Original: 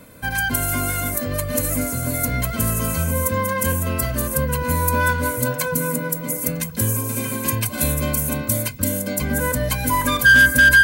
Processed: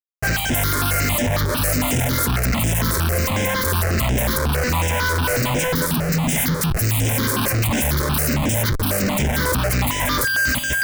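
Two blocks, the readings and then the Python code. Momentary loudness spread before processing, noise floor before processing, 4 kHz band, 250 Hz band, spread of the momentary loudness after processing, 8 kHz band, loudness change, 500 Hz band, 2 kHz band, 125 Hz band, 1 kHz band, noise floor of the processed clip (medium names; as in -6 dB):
7 LU, -30 dBFS, +4.0 dB, +2.0 dB, 1 LU, +0.5 dB, +0.5 dB, +1.0 dB, -5.5 dB, +3.5 dB, +1.0 dB, -23 dBFS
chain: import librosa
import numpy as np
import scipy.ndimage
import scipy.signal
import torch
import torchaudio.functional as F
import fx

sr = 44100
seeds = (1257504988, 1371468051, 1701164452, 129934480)

y = fx.vibrato(x, sr, rate_hz=1.6, depth_cents=5.9)
y = fx.spec_erase(y, sr, start_s=5.86, length_s=1.18, low_hz=280.0, high_hz=1600.0)
y = fx.schmitt(y, sr, flips_db=-31.5)
y = fx.phaser_held(y, sr, hz=11.0, low_hz=740.0, high_hz=4300.0)
y = F.gain(torch.from_numpy(y), 3.0).numpy()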